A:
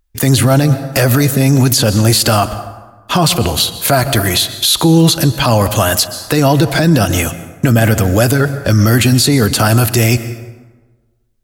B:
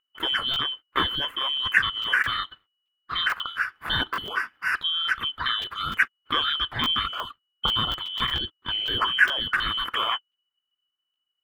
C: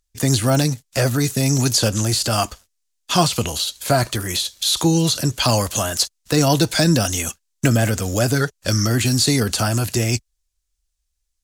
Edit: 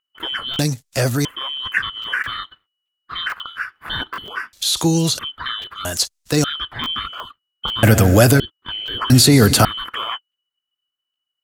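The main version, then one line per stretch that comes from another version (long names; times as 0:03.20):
B
0:00.59–0:01.25: punch in from C
0:04.53–0:05.19: punch in from C
0:05.85–0:06.44: punch in from C
0:07.83–0:08.40: punch in from A
0:09.10–0:09.65: punch in from A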